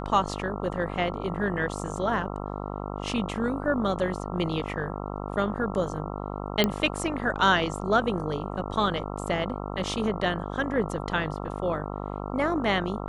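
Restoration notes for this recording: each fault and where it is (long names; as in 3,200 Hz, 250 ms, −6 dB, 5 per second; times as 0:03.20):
mains buzz 50 Hz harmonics 27 −34 dBFS
0:06.64: click −8 dBFS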